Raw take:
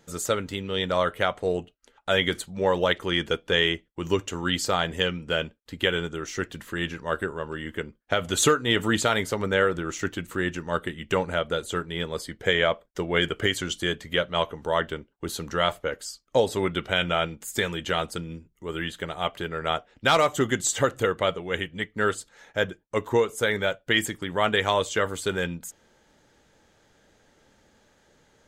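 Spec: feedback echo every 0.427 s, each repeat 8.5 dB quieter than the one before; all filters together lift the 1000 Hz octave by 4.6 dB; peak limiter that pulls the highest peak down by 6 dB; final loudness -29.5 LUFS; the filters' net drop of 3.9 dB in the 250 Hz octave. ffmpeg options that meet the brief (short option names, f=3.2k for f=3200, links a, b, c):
-af "equalizer=f=250:t=o:g=-6.5,equalizer=f=1k:t=o:g=6.5,alimiter=limit=-11dB:level=0:latency=1,aecho=1:1:427|854|1281|1708:0.376|0.143|0.0543|0.0206,volume=-3.5dB"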